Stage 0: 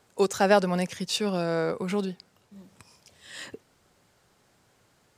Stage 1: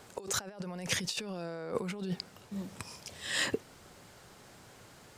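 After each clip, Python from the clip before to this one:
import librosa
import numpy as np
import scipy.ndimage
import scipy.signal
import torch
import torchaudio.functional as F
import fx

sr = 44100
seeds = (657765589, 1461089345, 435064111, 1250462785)

y = fx.over_compress(x, sr, threshold_db=-38.0, ratio=-1.0)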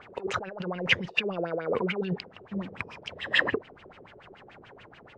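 y = fx.leveller(x, sr, passes=1)
y = fx.filter_lfo_lowpass(y, sr, shape='sine', hz=6.9, low_hz=380.0, high_hz=3000.0, q=5.3)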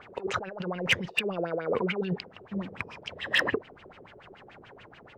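y = np.clip(x, -10.0 ** (-15.5 / 20.0), 10.0 ** (-15.5 / 20.0))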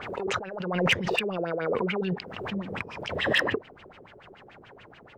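y = fx.pre_swell(x, sr, db_per_s=44.0)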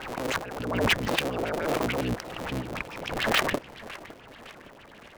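y = fx.cycle_switch(x, sr, every=3, mode='inverted')
y = fx.echo_warbled(y, sr, ms=559, feedback_pct=51, rate_hz=2.8, cents=190, wet_db=-18.0)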